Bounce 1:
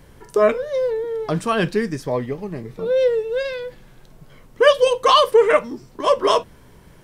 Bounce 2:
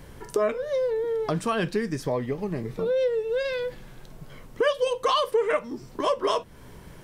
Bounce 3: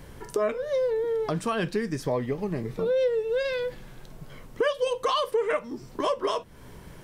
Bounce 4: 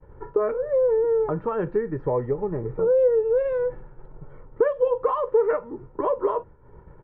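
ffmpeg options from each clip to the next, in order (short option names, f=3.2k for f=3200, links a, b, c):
-af "acompressor=threshold=-28dB:ratio=2.5,volume=2dB"
-af "alimiter=limit=-16dB:level=0:latency=1:release=366"
-af "lowpass=f=1.4k:w=0.5412,lowpass=f=1.4k:w=1.3066,agate=range=-33dB:threshold=-39dB:ratio=3:detection=peak,aecho=1:1:2.2:0.55,volume=2dB"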